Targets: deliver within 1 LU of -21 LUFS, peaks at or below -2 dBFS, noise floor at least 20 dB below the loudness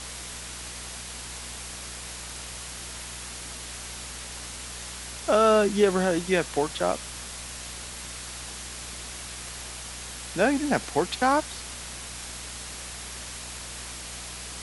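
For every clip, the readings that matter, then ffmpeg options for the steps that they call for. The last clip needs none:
hum 60 Hz; harmonics up to 240 Hz; hum level -43 dBFS; noise floor -39 dBFS; noise floor target -50 dBFS; loudness -29.5 LUFS; peak -8.0 dBFS; loudness target -21.0 LUFS
-> -af "bandreject=f=60:t=h:w=4,bandreject=f=120:t=h:w=4,bandreject=f=180:t=h:w=4,bandreject=f=240:t=h:w=4"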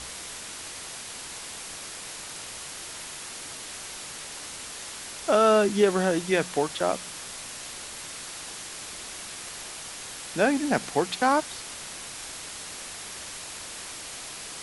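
hum none; noise floor -40 dBFS; noise floor target -50 dBFS
-> -af "afftdn=nr=10:nf=-40"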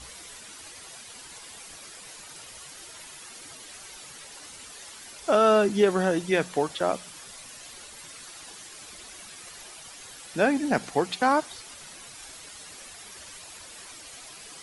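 noise floor -45 dBFS; loudness -24.5 LUFS; peak -8.0 dBFS; loudness target -21.0 LUFS
-> -af "volume=3.5dB"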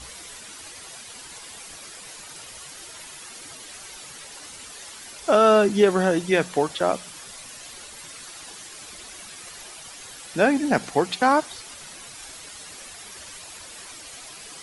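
loudness -21.0 LUFS; peak -4.5 dBFS; noise floor -42 dBFS

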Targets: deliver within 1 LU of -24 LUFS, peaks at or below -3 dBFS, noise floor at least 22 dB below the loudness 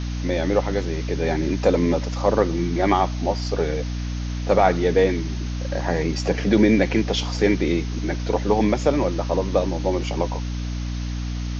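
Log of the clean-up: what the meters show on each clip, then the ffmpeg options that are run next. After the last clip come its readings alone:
hum 60 Hz; harmonics up to 300 Hz; hum level -24 dBFS; noise floor -27 dBFS; noise floor target -45 dBFS; loudness -22.5 LUFS; peak -4.0 dBFS; loudness target -24.0 LUFS
-> -af "bandreject=f=60:t=h:w=6,bandreject=f=120:t=h:w=6,bandreject=f=180:t=h:w=6,bandreject=f=240:t=h:w=6,bandreject=f=300:t=h:w=6"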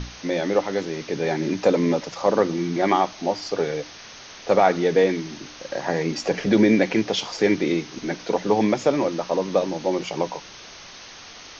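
hum none; noise floor -42 dBFS; noise floor target -45 dBFS
-> -af "afftdn=nr=6:nf=-42"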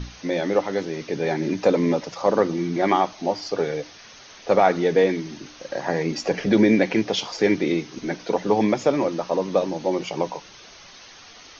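noise floor -46 dBFS; loudness -22.5 LUFS; peak -4.5 dBFS; loudness target -24.0 LUFS
-> -af "volume=-1.5dB"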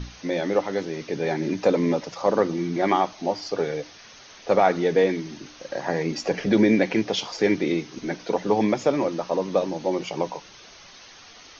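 loudness -24.0 LUFS; peak -6.0 dBFS; noise floor -47 dBFS

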